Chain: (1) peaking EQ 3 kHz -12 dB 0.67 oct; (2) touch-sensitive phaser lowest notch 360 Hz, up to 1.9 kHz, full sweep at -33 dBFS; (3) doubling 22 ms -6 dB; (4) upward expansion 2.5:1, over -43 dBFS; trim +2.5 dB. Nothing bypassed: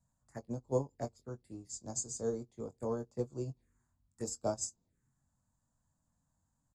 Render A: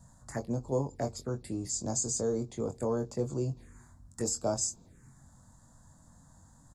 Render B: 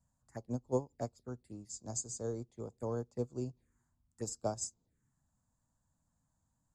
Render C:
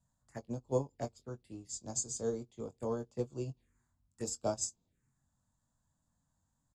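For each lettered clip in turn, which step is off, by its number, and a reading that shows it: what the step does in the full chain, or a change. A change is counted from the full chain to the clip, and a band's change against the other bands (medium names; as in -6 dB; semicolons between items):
4, crest factor change -4.0 dB; 3, 125 Hz band +1.5 dB; 1, 4 kHz band +3.0 dB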